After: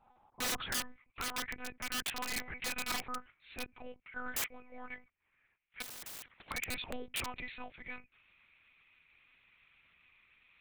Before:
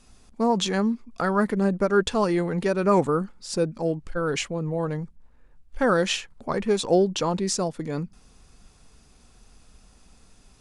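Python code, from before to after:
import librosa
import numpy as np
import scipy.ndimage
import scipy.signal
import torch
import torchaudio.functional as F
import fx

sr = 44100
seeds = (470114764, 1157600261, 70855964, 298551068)

y = fx.filter_sweep_bandpass(x, sr, from_hz=850.0, to_hz=2300.0, start_s=0.28, end_s=1.1, q=6.9)
y = fx.lpc_monotone(y, sr, seeds[0], pitch_hz=250.0, order=8)
y = (np.mod(10.0 ** (38.0 / 20.0) * y + 1.0, 2.0) - 1.0) / 10.0 ** (38.0 / 20.0)
y = fx.spectral_comp(y, sr, ratio=10.0, at=(5.82, 6.51))
y = F.gain(torch.from_numpy(y), 9.0).numpy()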